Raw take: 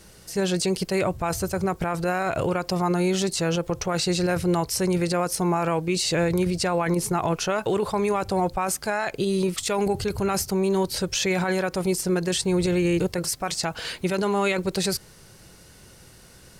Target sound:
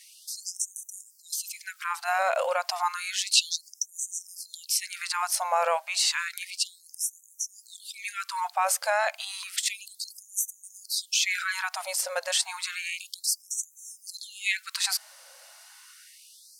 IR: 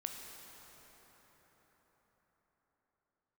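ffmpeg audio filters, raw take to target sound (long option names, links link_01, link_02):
-filter_complex "[0:a]asettb=1/sr,asplit=3[link_01][link_02][link_03];[link_01]atrim=end=3.314[link_04];[link_02]atrim=start=3.31:end=3.82,asetpts=PTS-STARTPTS,afade=type=in:duration=0.004:curve=qsin,afade=type=out:start_time=0.506:duration=0.004:curve=qsin,equalizer=frequency=3100:width=0.64:gain=11[link_05];[link_03]atrim=start=3.816[link_06];[link_04][link_05]acrossfade=duration=0.004:curve1=hsin:curve2=qsin[link_07];[link_07][link_06]acrossfade=duration=0.004:curve1=qsin:curve2=hsin,afftfilt=real='re*gte(b*sr/1024,500*pow(5900/500,0.5+0.5*sin(2*PI*0.31*pts/sr)))':imag='im*gte(b*sr/1024,500*pow(5900/500,0.5+0.5*sin(2*PI*0.31*pts/sr)))':win_size=1024:overlap=0.75,volume=1.5dB"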